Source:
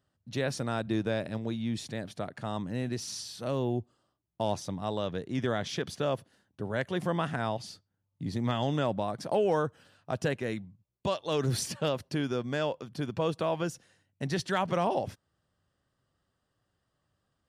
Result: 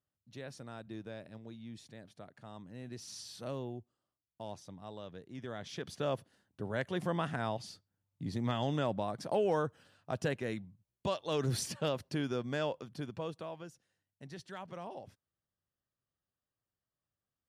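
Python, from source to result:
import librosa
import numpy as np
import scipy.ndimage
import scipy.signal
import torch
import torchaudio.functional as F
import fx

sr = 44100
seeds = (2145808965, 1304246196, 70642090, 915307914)

y = fx.gain(x, sr, db=fx.line((2.72, -15.0), (3.36, -5.0), (3.8, -14.0), (5.42, -14.0), (6.08, -4.0), (12.81, -4.0), (13.68, -16.5)))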